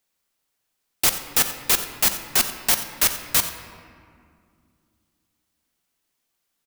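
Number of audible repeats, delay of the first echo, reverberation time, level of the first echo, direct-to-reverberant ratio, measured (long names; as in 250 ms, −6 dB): 1, 89 ms, 2.3 s, −15.0 dB, 6.5 dB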